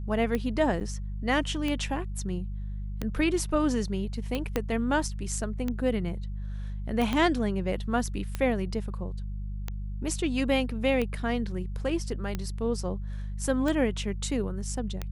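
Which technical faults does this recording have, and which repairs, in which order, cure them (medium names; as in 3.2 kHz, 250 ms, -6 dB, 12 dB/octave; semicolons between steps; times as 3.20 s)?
hum 50 Hz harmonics 4 -34 dBFS
tick 45 rpm -17 dBFS
0.80–0.81 s: dropout 7.7 ms
4.56 s: pop -12 dBFS
7.13 s: pop -15 dBFS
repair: de-click; de-hum 50 Hz, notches 4; interpolate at 0.80 s, 7.7 ms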